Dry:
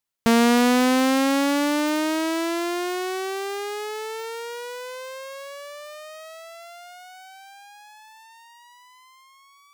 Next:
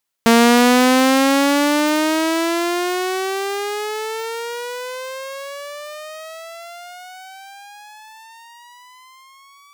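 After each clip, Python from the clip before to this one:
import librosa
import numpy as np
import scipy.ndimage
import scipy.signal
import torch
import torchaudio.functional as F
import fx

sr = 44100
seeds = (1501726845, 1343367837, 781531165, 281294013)

y = fx.low_shelf(x, sr, hz=170.0, db=-8.5)
y = F.gain(torch.from_numpy(y), 7.0).numpy()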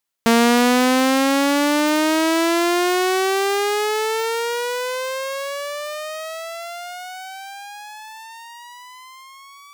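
y = fx.rider(x, sr, range_db=4, speed_s=2.0)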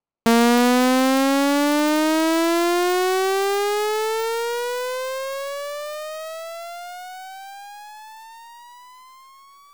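y = scipy.ndimage.median_filter(x, 25, mode='constant')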